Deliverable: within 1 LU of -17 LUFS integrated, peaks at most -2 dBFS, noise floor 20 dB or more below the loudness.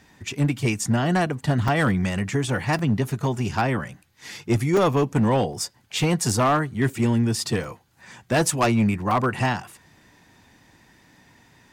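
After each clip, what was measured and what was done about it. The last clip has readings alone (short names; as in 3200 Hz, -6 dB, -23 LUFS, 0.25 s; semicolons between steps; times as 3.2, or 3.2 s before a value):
clipped 1.4%; flat tops at -14.0 dBFS; dropouts 7; longest dropout 3.1 ms; loudness -23.0 LUFS; peak -14.0 dBFS; loudness target -17.0 LUFS
-> clip repair -14 dBFS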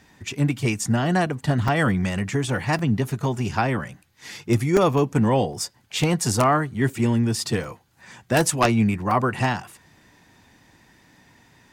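clipped 0.0%; dropouts 7; longest dropout 3.1 ms
-> interpolate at 1.68/2.79/4.77/5.53/6.89/7.64/9.11, 3.1 ms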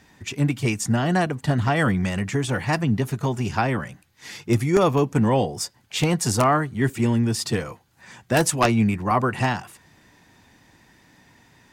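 dropouts 0; loudness -22.5 LUFS; peak -5.0 dBFS; loudness target -17.0 LUFS
-> gain +5.5 dB; limiter -2 dBFS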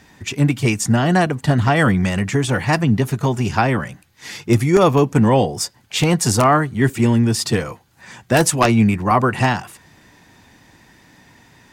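loudness -17.0 LUFS; peak -2.0 dBFS; noise floor -53 dBFS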